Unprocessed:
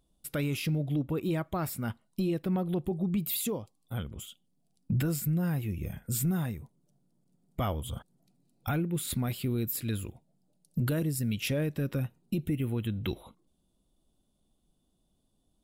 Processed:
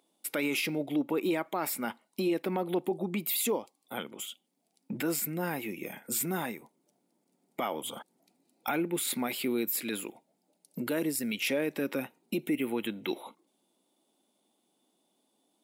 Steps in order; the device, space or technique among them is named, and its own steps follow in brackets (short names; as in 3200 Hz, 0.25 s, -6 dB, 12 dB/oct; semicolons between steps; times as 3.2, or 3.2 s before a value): laptop speaker (HPF 260 Hz 24 dB/oct; bell 870 Hz +7 dB 0.24 oct; bell 2200 Hz +7 dB 0.38 oct; limiter -26 dBFS, peak gain reduction 7 dB); gain +5 dB